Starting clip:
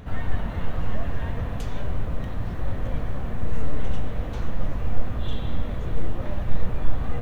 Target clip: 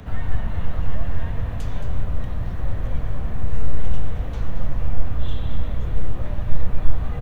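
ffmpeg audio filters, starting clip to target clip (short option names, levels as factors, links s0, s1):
-filter_complex "[0:a]aecho=1:1:222:0.335,acrossover=split=250|450|1000[s0][s1][s2][s3];[s1]alimiter=level_in=7.94:limit=0.0631:level=0:latency=1,volume=0.126[s4];[s0][s4][s2][s3]amix=inputs=4:normalize=0,acrossover=split=130[s5][s6];[s6]acompressor=threshold=0.00447:ratio=1.5[s7];[s5][s7]amix=inputs=2:normalize=0,volume=1.5"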